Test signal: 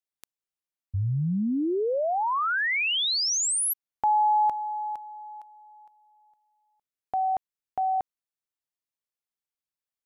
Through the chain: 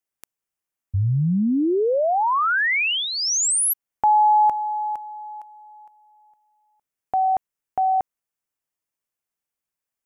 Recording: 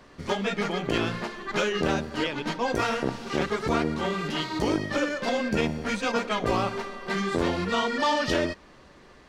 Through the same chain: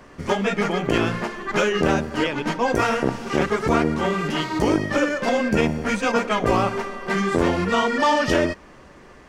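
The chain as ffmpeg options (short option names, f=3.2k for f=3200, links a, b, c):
-af "equalizer=f=4k:w=2.2:g=-8,volume=6dB"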